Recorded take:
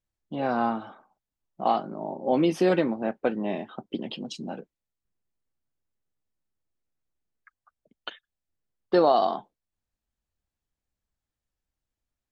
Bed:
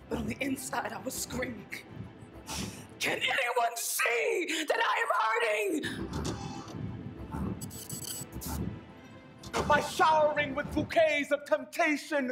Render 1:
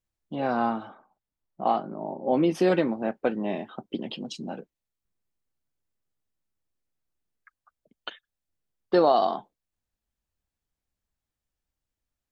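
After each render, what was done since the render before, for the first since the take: 0.87–2.55 high shelf 3600 Hz -10 dB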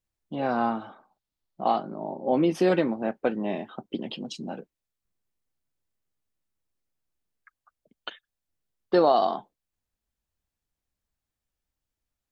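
0.88–2.3 bell 4100 Hz +6.5 dB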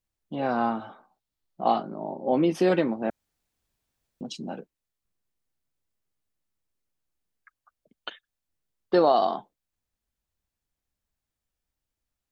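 0.78–1.83 doubler 17 ms -8 dB; 3.1–4.21 room tone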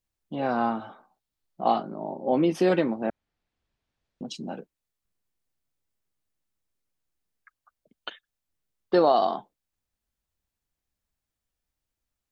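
3.06–4.26 LPF 3100 Hz -> 4900 Hz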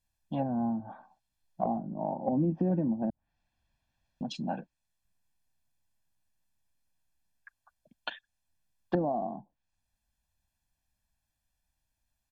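comb 1.2 ms, depth 77%; treble ducked by the level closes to 310 Hz, closed at -23.5 dBFS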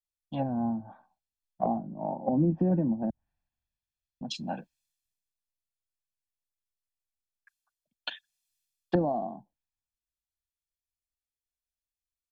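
three-band expander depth 70%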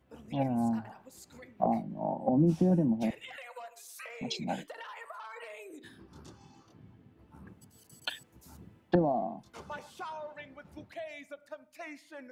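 add bed -17 dB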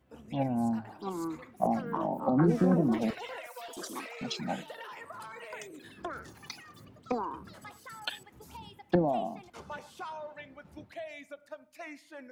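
echoes that change speed 0.789 s, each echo +6 st, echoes 3, each echo -6 dB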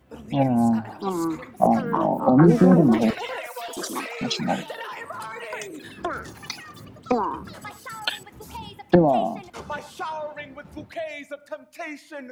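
gain +10 dB

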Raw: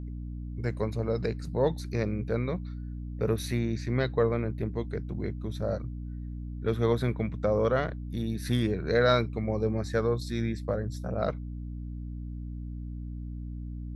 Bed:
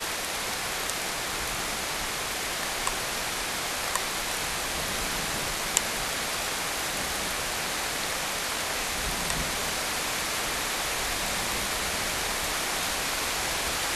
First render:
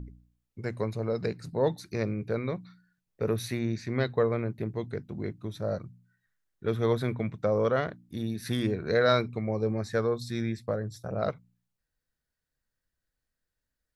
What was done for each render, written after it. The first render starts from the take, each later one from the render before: de-hum 60 Hz, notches 5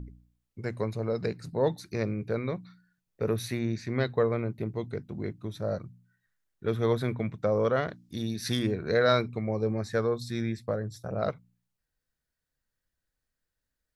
4.38–4.99 notch 1700 Hz, Q 7.8; 7.88–8.59 bell 5200 Hz +9.5 dB 1.3 oct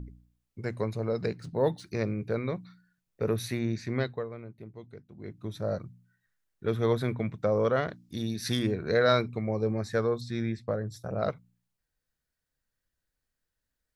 1.35–1.87 decimation joined by straight lines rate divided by 3×; 3.94–5.49 dip -12.5 dB, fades 0.31 s; 10.21–10.88 air absorption 77 m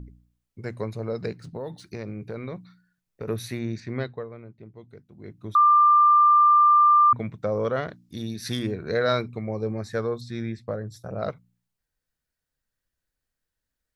1.39–3.28 compressor 10:1, threshold -29 dBFS; 3.8–4.89 air absorption 86 m; 5.55–7.13 bleep 1190 Hz -13 dBFS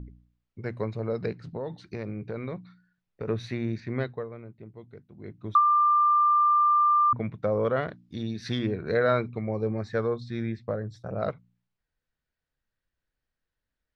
LPF 3700 Hz 12 dB/oct; treble ducked by the level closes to 1000 Hz, closed at -14.5 dBFS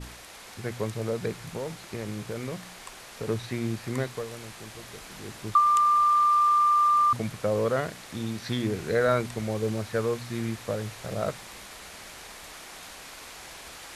add bed -15 dB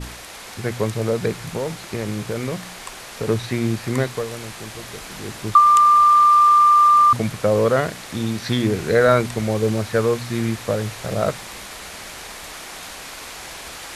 gain +8.5 dB

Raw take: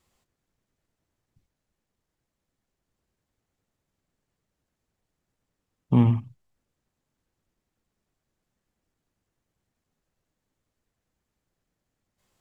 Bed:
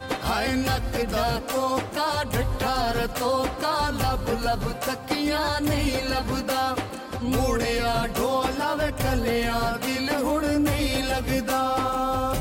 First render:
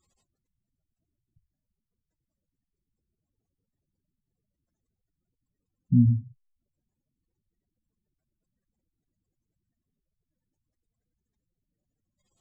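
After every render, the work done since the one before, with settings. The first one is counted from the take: high shelf 2700 Hz +8 dB; spectral gate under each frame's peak -10 dB strong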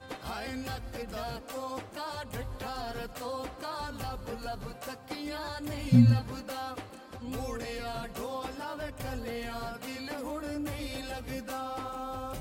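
add bed -13 dB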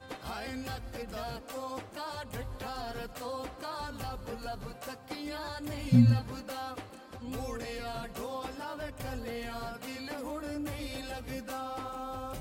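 gain -1.5 dB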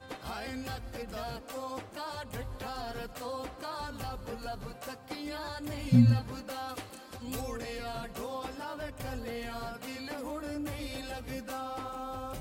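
6.69–7.41 high shelf 3300 Hz +9.5 dB

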